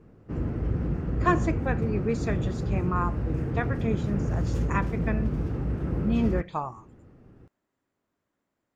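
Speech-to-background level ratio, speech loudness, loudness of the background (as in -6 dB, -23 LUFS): -1.5 dB, -31.0 LUFS, -29.5 LUFS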